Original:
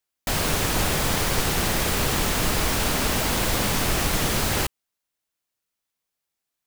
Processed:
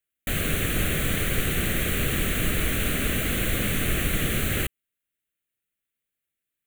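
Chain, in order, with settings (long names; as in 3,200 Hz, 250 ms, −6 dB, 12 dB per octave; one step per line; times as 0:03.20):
phaser with its sweep stopped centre 2,200 Hz, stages 4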